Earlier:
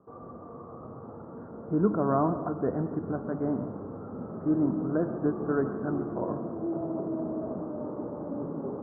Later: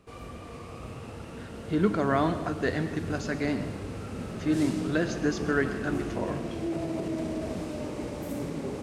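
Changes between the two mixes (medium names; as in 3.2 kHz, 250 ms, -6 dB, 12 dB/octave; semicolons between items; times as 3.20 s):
background: remove high-pass 150 Hz 12 dB/octave; master: remove steep low-pass 1.3 kHz 48 dB/octave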